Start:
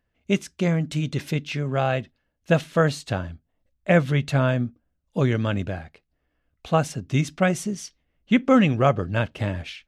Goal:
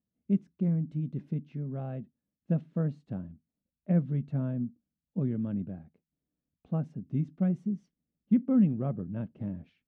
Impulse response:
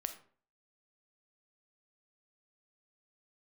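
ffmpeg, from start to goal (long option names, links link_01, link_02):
-af "bandpass=frequency=200:width_type=q:width=2.4:csg=0,volume=-2.5dB"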